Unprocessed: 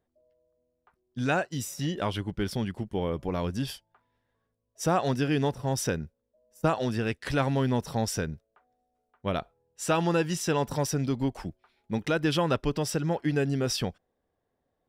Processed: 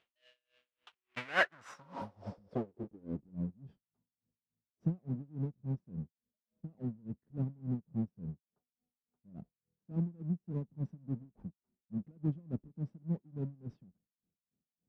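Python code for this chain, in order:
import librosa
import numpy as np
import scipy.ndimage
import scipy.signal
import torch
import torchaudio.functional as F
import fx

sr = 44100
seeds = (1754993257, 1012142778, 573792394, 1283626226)

y = fx.halfwave_hold(x, sr)
y = fx.spec_repair(y, sr, seeds[0], start_s=1.85, length_s=0.61, low_hz=220.0, high_hz=8700.0, source='both')
y = fx.filter_sweep_lowpass(y, sr, from_hz=2900.0, to_hz=190.0, start_s=1.0, end_s=3.35, q=2.9)
y = fx.tilt_eq(y, sr, slope=4.0)
y = y * 10.0 ** (-27 * (0.5 - 0.5 * np.cos(2.0 * np.pi * 3.5 * np.arange(len(y)) / sr)) / 20.0)
y = F.gain(torch.from_numpy(y), -2.0).numpy()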